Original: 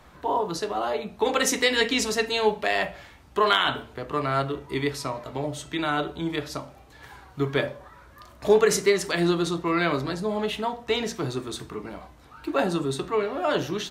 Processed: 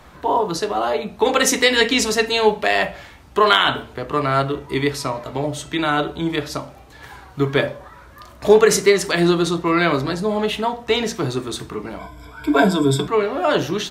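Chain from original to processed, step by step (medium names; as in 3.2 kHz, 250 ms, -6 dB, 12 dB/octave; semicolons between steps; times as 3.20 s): 11.99–13.08 s: rippled EQ curve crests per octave 1.7, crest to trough 18 dB; trim +6.5 dB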